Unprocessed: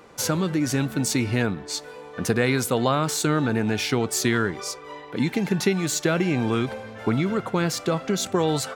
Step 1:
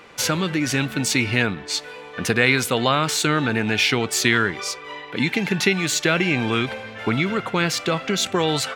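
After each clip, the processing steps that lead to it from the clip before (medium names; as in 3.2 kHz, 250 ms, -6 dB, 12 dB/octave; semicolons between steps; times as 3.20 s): peaking EQ 2.6 kHz +11 dB 1.7 oct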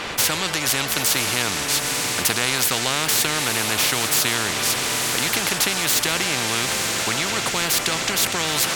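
echo that smears into a reverb 958 ms, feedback 54%, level -14.5 dB; spectrum-flattening compressor 4:1; trim -1.5 dB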